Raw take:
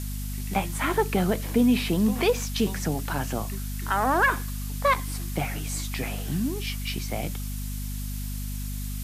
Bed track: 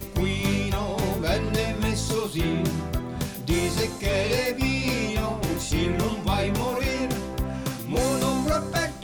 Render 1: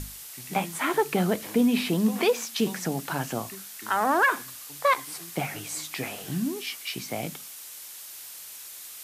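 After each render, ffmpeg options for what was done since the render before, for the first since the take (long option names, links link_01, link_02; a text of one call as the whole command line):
ffmpeg -i in.wav -af "bandreject=frequency=50:width_type=h:width=6,bandreject=frequency=100:width_type=h:width=6,bandreject=frequency=150:width_type=h:width=6,bandreject=frequency=200:width_type=h:width=6,bandreject=frequency=250:width_type=h:width=6" out.wav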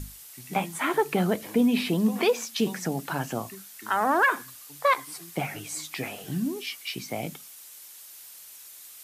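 ffmpeg -i in.wav -af "afftdn=noise_reduction=6:noise_floor=-43" out.wav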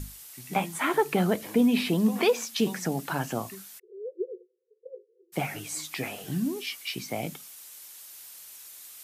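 ffmpeg -i in.wav -filter_complex "[0:a]asplit=3[link_01][link_02][link_03];[link_01]afade=type=out:start_time=3.78:duration=0.02[link_04];[link_02]asuperpass=centerf=430:order=20:qfactor=2.6,afade=type=in:start_time=3.78:duration=0.02,afade=type=out:start_time=5.32:duration=0.02[link_05];[link_03]afade=type=in:start_time=5.32:duration=0.02[link_06];[link_04][link_05][link_06]amix=inputs=3:normalize=0" out.wav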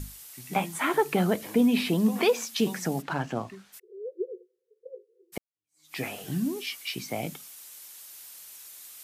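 ffmpeg -i in.wav -filter_complex "[0:a]asplit=3[link_01][link_02][link_03];[link_01]afade=type=out:start_time=3.01:duration=0.02[link_04];[link_02]adynamicsmooth=sensitivity=5.5:basefreq=3200,afade=type=in:start_time=3.01:duration=0.02,afade=type=out:start_time=3.72:duration=0.02[link_05];[link_03]afade=type=in:start_time=3.72:duration=0.02[link_06];[link_04][link_05][link_06]amix=inputs=3:normalize=0,asplit=2[link_07][link_08];[link_07]atrim=end=5.38,asetpts=PTS-STARTPTS,afade=type=out:start_time=5.376:duration=0.004:curve=hsin[link_09];[link_08]atrim=start=5.38,asetpts=PTS-STARTPTS,afade=type=in:duration=0.59:curve=exp[link_10];[link_09][link_10]concat=n=2:v=0:a=1" out.wav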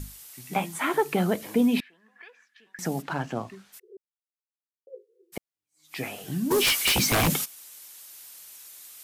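ffmpeg -i in.wav -filter_complex "[0:a]asettb=1/sr,asplit=3[link_01][link_02][link_03];[link_01]atrim=end=1.804[link_04];[link_02]atrim=start=1.8:end=2.79,asetpts=PTS-STARTPTS,afade=type=in:duration=0.004:curve=qsin,afade=type=out:start_time=0.986:duration=0.004:curve=qsin,bandpass=frequency=1700:width_type=q:width=16[link_05];[link_03]atrim=start=2.786[link_06];[link_04][link_05]acrossfade=duration=0.004:curve1=hsin:curve2=qsin[link_07];[link_07][link_06]acrossfade=duration=0.004:curve1=qsin:curve2=hsin,asplit=3[link_08][link_09][link_10];[link_08]afade=type=out:start_time=6.5:duration=0.02[link_11];[link_09]aeval=exprs='0.126*sin(PI/2*5.01*val(0)/0.126)':channel_layout=same,afade=type=in:start_time=6.5:duration=0.02,afade=type=out:start_time=7.44:duration=0.02[link_12];[link_10]afade=type=in:start_time=7.44:duration=0.02[link_13];[link_11][link_12][link_13]amix=inputs=3:normalize=0,asplit=3[link_14][link_15][link_16];[link_14]atrim=end=3.97,asetpts=PTS-STARTPTS,afade=type=out:start_time=3.966:duration=0.004:curve=hsin[link_17];[link_15]atrim=start=3.97:end=4.87,asetpts=PTS-STARTPTS,volume=0[link_18];[link_16]atrim=start=4.87,asetpts=PTS-STARTPTS,afade=type=in:duration=0.004:curve=hsin[link_19];[link_17][link_18][link_19]concat=n=3:v=0:a=1" out.wav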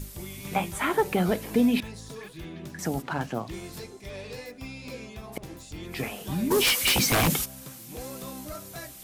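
ffmpeg -i in.wav -i bed.wav -filter_complex "[1:a]volume=-15.5dB[link_01];[0:a][link_01]amix=inputs=2:normalize=0" out.wav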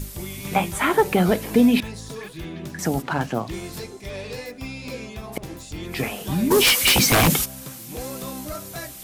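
ffmpeg -i in.wav -af "volume=6dB" out.wav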